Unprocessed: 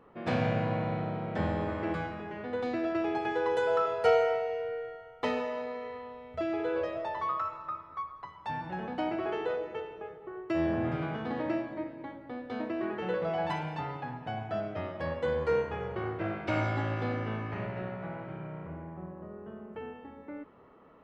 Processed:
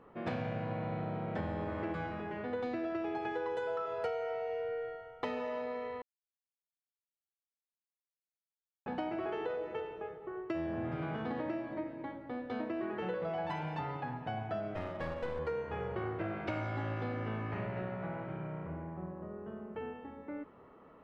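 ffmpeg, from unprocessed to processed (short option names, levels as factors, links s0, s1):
-filter_complex "[0:a]asettb=1/sr,asplit=3[s0][s1][s2];[s0]atrim=end=14.744[s3];[s1]atrim=start=14.74:end=15.39,asetpts=PTS-STARTPTS,afade=t=in:d=0.004:c=qsin,afade=t=out:st=0.646:d=0.004:c=qsin,aeval=exprs='clip(val(0),-1,0.0112)':c=same[s4];[s2]atrim=start=15.386[s5];[s3][s4]acrossfade=d=0.004:c1=hsin:c2=qsin[s6];[s6][s5]acrossfade=d=0.004:c1=qsin:c2=hsin,asplit=3[s7][s8][s9];[s7]atrim=end=6.02,asetpts=PTS-STARTPTS,afade=t=out:st=6.016:d=0.004:c=hsin[s10];[s8]atrim=start=6.02:end=8.86,asetpts=PTS-STARTPTS,volume=0[s11];[s9]atrim=start=8.86,asetpts=PTS-STARTPTS,afade=t=in:d=0.004:c=hsin[s12];[s10][s11][s12]concat=n=3:v=0:a=1,highshelf=f=5400:g=-8,acompressor=threshold=0.0224:ratio=10"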